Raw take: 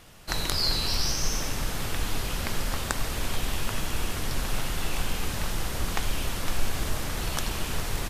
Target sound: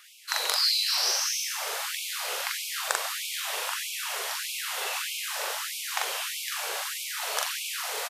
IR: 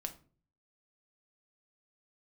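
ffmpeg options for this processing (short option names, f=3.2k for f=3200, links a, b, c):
-filter_complex "[0:a]asplit=2[a][b];[b]adelay=42,volume=-2dB[c];[a][c]amix=inputs=2:normalize=0,afftfilt=real='re*gte(b*sr/1024,380*pow(2200/380,0.5+0.5*sin(2*PI*1.6*pts/sr)))':imag='im*gte(b*sr/1024,380*pow(2200/380,0.5+0.5*sin(2*PI*1.6*pts/sr)))':win_size=1024:overlap=0.75,volume=1.5dB"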